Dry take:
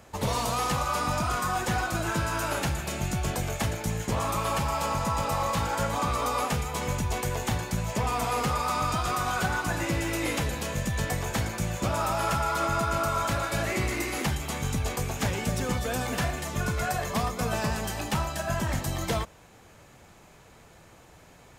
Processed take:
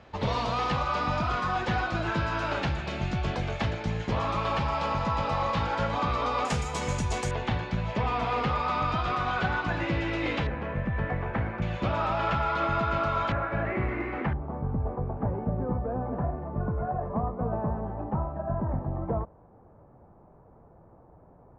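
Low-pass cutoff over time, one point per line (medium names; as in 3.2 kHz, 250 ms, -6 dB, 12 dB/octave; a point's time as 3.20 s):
low-pass 24 dB/octave
4.3 kHz
from 6.45 s 8 kHz
from 7.31 s 3.8 kHz
from 10.47 s 2.1 kHz
from 11.62 s 3.6 kHz
from 13.32 s 2 kHz
from 14.33 s 1 kHz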